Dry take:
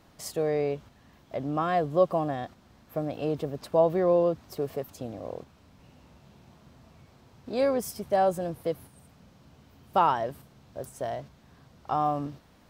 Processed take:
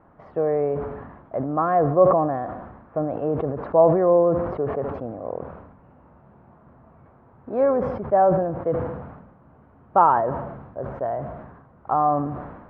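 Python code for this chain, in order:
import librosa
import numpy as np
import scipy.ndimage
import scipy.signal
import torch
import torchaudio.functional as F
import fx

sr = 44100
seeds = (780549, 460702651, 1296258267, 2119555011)

p1 = scipy.signal.sosfilt(scipy.signal.butter(4, 1400.0, 'lowpass', fs=sr, output='sos'), x)
p2 = fx.low_shelf(p1, sr, hz=410.0, db=-7.0)
p3 = p2 + fx.echo_feedback(p2, sr, ms=75, feedback_pct=56, wet_db=-21.5, dry=0)
p4 = fx.sustainer(p3, sr, db_per_s=50.0)
y = p4 * librosa.db_to_amplitude(8.0)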